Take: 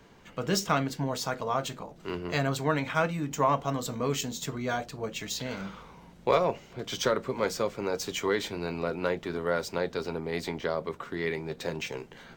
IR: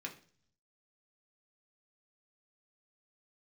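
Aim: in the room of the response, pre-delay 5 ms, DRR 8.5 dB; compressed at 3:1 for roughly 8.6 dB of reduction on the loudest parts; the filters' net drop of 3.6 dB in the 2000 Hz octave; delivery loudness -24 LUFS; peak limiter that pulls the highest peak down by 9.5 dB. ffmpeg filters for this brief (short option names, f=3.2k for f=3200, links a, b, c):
-filter_complex "[0:a]equalizer=f=2k:t=o:g=-5,acompressor=threshold=-31dB:ratio=3,alimiter=level_in=3dB:limit=-24dB:level=0:latency=1,volume=-3dB,asplit=2[a][b];[1:a]atrim=start_sample=2205,adelay=5[c];[b][c]afir=irnorm=-1:irlink=0,volume=-7.5dB[d];[a][d]amix=inputs=2:normalize=0,volume=13.5dB"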